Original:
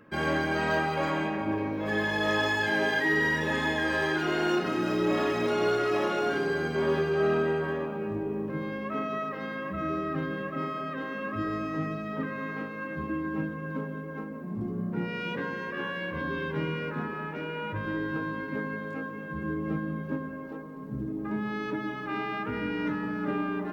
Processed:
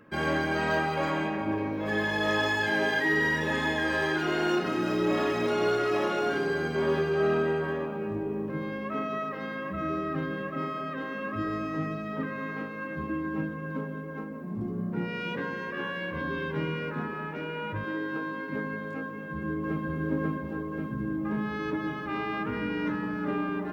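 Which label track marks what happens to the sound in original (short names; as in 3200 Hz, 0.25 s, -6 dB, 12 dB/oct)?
17.840000	18.490000	HPF 230 Hz
19.090000	19.830000	echo throw 0.54 s, feedback 75%, level -0.5 dB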